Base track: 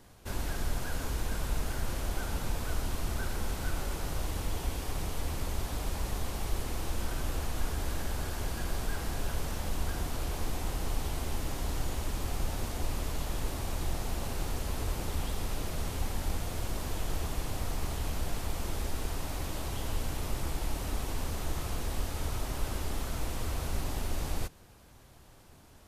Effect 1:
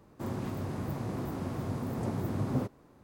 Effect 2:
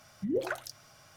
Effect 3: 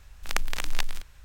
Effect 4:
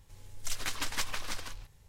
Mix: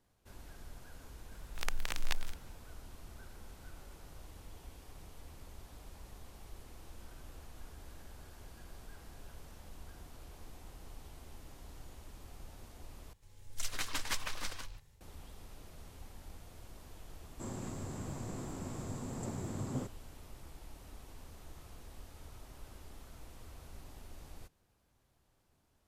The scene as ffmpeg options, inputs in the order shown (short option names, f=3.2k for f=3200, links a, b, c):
-filter_complex "[0:a]volume=-18dB[a];[3:a]alimiter=limit=-6.5dB:level=0:latency=1:release=71[b];[4:a]dynaudnorm=f=200:g=3:m=5.5dB[c];[1:a]lowpass=f=7.5k:t=q:w=12[d];[a]asplit=2[e][f];[e]atrim=end=13.134[g];[c]atrim=end=1.88,asetpts=PTS-STARTPTS,volume=-8.5dB[h];[f]atrim=start=15.006[i];[b]atrim=end=1.24,asetpts=PTS-STARTPTS,volume=-7dB,afade=t=in:d=0.004:c=hsin,afade=t=out:st=1.236:d=0.004:c=hsin,adelay=1320[j];[d]atrim=end=3.03,asetpts=PTS-STARTPTS,volume=-7.5dB,afade=t=in:d=0.004:c=hsin,afade=t=out:st=3.026:d=0.004:c=hsin,adelay=17200[k];[g][h]acrossfade=d=0.004:c1=hsin:c2=hsin[l];[l][i]acrossfade=d=0.004:c1=hsin:c2=hsin[m];[m][j][k]amix=inputs=3:normalize=0"